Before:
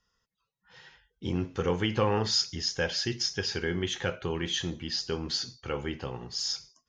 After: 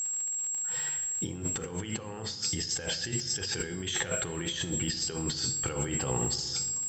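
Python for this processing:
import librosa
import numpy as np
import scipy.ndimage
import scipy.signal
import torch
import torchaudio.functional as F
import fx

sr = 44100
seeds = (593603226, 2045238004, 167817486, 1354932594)

y = x + 10.0 ** (-40.0 / 20.0) * np.sin(2.0 * np.pi * 7600.0 * np.arange(len(x)) / sr)
y = fx.dmg_crackle(y, sr, seeds[0], per_s=110.0, level_db=-46.0)
y = fx.over_compress(y, sr, threshold_db=-38.0, ratio=-1.0)
y = fx.room_shoebox(y, sr, seeds[1], volume_m3=2400.0, walls='mixed', distance_m=0.57)
y = F.gain(torch.from_numpy(y), 4.0).numpy()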